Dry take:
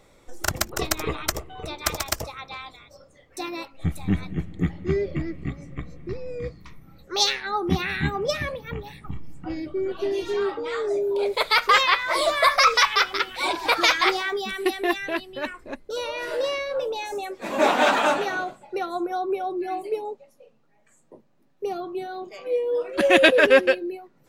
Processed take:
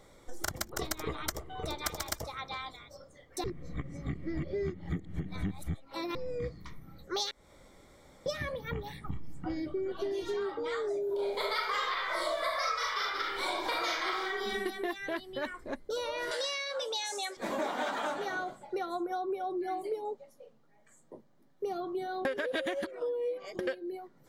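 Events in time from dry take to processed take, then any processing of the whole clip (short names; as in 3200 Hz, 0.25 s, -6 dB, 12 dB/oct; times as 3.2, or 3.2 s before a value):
1.34–1.83 echo throw 0.34 s, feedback 10%, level -9 dB
3.44–6.15 reverse
7.31–8.26 room tone
11.05–14.6 reverb throw, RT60 0.8 s, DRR -4.5 dB
16.31–17.37 weighting filter ITU-R 468
22.25–23.59 reverse
whole clip: notch 2600 Hz, Q 5.1; compressor 6:1, threshold -30 dBFS; gain -1.5 dB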